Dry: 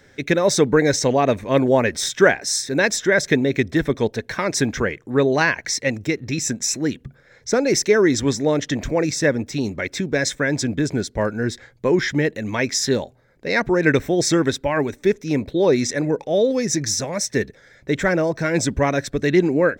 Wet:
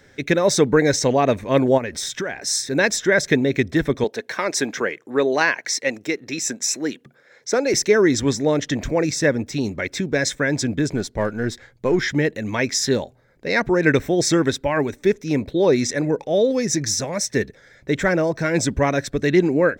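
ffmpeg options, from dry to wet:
-filter_complex "[0:a]asplit=3[a][b][c];[a]afade=t=out:st=1.77:d=0.02[d];[b]acompressor=threshold=-23dB:ratio=6:attack=3.2:release=140:knee=1:detection=peak,afade=t=in:st=1.77:d=0.02,afade=t=out:st=2.43:d=0.02[e];[c]afade=t=in:st=2.43:d=0.02[f];[d][e][f]amix=inputs=3:normalize=0,asettb=1/sr,asplit=3[g][h][i];[g]atrim=end=4.044[j];[h]atrim=start=4.04:end=7.74,asetpts=PTS-STARTPTS,afade=t=in:d=0.004:c=qsin,afade=t=out:st=3.696:d=0.004:c=qsin,highpass=300[k];[i]atrim=start=7.736[l];[j][k]acrossfade=d=0.004:c1=hsin:c2=qsin[m];[m][l]acrossfade=d=0.004:c1=qsin:c2=hsin,asettb=1/sr,asplit=3[n][o][p];[n]atrim=end=10.924[q];[o]atrim=start=10.92:end=12.03,asetpts=PTS-STARTPTS,afade=t=in:d=0.004:c=qsin,afade=t=out:st=1.106:d=0.004:c=qsin,aeval=exprs='if(lt(val(0),0),0.708*val(0),val(0))':c=same[r];[p]atrim=start=12.026[s];[q][r]acrossfade=d=0.004:c1=hsin:c2=qsin[t];[t][s]acrossfade=d=0.004:c1=qsin:c2=hsin"

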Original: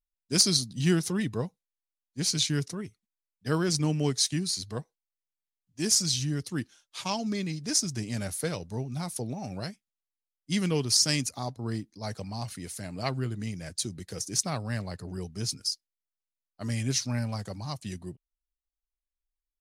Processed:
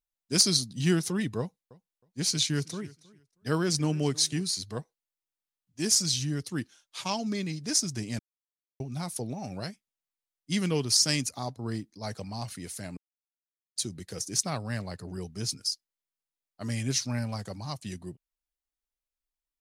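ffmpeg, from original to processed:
-filter_complex "[0:a]asettb=1/sr,asplit=3[a][b][c];[a]atrim=end=1.394[d];[b]atrim=start=1.39:end=4.42,asetpts=PTS-STARTPTS,afade=t=in:d=0.004:c=qsin,afade=t=out:st=3.026:d=0.004:c=qsin,aecho=1:1:316|632:0.0794|0.0151,atrim=end_sample=133623[e];[c]atrim=start=4.416[f];[d][e]acrossfade=d=0.004:c1=hsin:c2=qsin[g];[g][f]acrossfade=d=0.004:c1=qsin:c2=hsin,asplit=5[h][i][j][k][l];[h]atrim=end=8.19,asetpts=PTS-STARTPTS,afade=t=out:st=8.186:d=0.004:c=hsin[m];[i]atrim=start=8.19:end=8.8,asetpts=PTS-STARTPTS,volume=0[n];[j]atrim=start=8.8:end=12.97,asetpts=PTS-STARTPTS,afade=t=in:d=0.004:c=hsin,afade=t=out:st=4.166:d=0.004:c=hsin[o];[k]atrim=start=12.97:end=13.76,asetpts=PTS-STARTPTS,volume=0[p];[l]atrim=start=13.76,asetpts=PTS-STARTPTS,afade=t=in:d=0.004:c=hsin[q];[m][n][o][p][q]concat=n=5:v=0:a=1,lowshelf=f=66:g=-6.5"

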